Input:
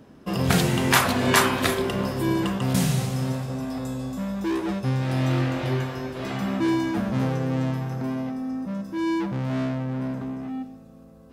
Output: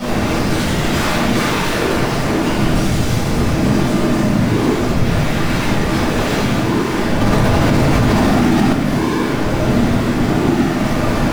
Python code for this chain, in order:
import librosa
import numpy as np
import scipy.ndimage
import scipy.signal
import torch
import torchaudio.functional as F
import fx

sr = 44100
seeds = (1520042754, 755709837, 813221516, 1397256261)

y = np.sign(x) * np.sqrt(np.mean(np.square(x)))
y = scipy.signal.sosfilt(scipy.signal.butter(2, 6100.0, 'lowpass', fs=sr, output='sos'), y)
y = fx.leveller(y, sr, passes=3)
y = fx.chorus_voices(y, sr, voices=4, hz=0.4, base_ms=16, depth_ms=4.1, mix_pct=35)
y = fx.whisperise(y, sr, seeds[0])
y = fx.room_shoebox(y, sr, seeds[1], volume_m3=460.0, walls='mixed', distance_m=6.8)
y = fx.env_flatten(y, sr, amount_pct=100, at=(7.21, 8.73))
y = F.gain(torch.from_numpy(y), -4.5).numpy()